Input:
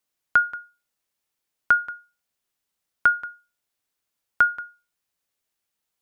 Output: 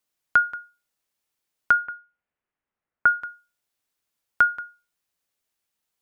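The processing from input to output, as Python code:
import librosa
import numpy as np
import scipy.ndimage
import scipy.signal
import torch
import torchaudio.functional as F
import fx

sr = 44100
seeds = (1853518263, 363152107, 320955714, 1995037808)

y = fx.lowpass(x, sr, hz=fx.line((1.72, 2700.0), (3.2, 2000.0)), slope=24, at=(1.72, 3.2), fade=0.02)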